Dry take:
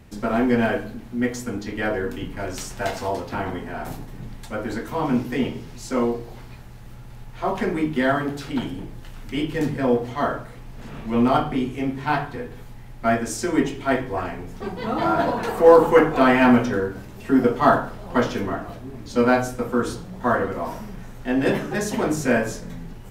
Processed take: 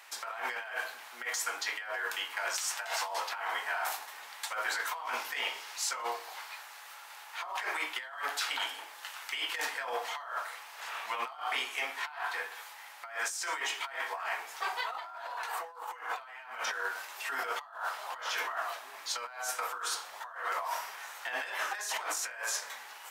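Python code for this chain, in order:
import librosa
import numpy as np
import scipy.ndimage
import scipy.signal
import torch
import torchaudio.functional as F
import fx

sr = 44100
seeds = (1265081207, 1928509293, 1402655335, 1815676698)

y = scipy.signal.sosfilt(scipy.signal.butter(4, 880.0, 'highpass', fs=sr, output='sos'), x)
y = fx.over_compress(y, sr, threshold_db=-38.0, ratio=-1.0)
y = fx.end_taper(y, sr, db_per_s=430.0)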